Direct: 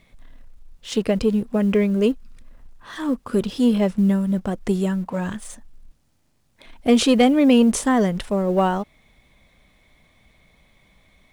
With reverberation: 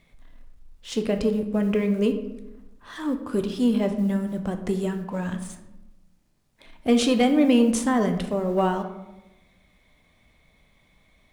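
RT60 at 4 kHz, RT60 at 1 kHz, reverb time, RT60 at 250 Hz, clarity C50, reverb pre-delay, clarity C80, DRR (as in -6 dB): 0.55 s, 0.90 s, 1.0 s, 1.2 s, 9.5 dB, 8 ms, 11.5 dB, 6.0 dB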